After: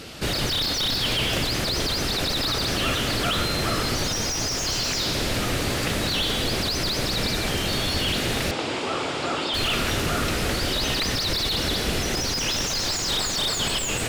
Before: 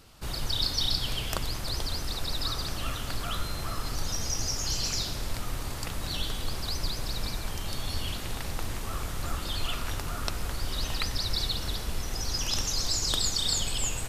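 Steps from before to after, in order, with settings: bell 1000 Hz -15 dB 1.3 oct; overdrive pedal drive 36 dB, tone 1200 Hz, clips at -7.5 dBFS; 8.51–9.54 speaker cabinet 200–7100 Hz, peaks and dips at 200 Hz -8 dB, 890 Hz +5 dB, 1800 Hz -6 dB, 4100 Hz -3 dB, 6100 Hz -8 dB

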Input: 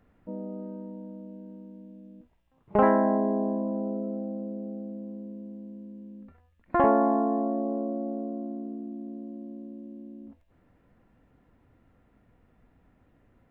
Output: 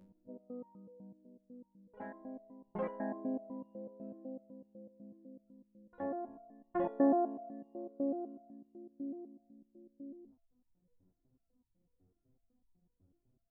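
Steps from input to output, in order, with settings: low-pass opened by the level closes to 390 Hz, open at -22.5 dBFS; dynamic EQ 1200 Hz, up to -8 dB, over -43 dBFS, Q 1.7; reverse echo 0.816 s -12 dB; stepped resonator 8 Hz 92–940 Hz; gain +1 dB

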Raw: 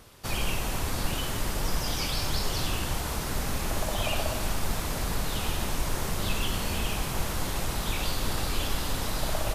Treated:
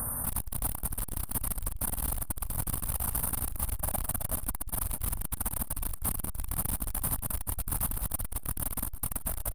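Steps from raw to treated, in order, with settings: octaver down 2 oct, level -4 dB; brick-wall FIR band-stop 2400–8400 Hz; tone controls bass +4 dB, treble +8 dB; fixed phaser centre 920 Hz, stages 4; small resonant body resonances 270/410 Hz, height 9 dB; on a send: feedback echo 0.71 s, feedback 48%, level -11.5 dB; on the sum: hard clip -28 dBFS, distortion -6 dB; high shelf 2500 Hz +7 dB; in parallel at +1 dB: negative-ratio compressor -43 dBFS, ratio -1; on the sum: core saturation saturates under 140 Hz

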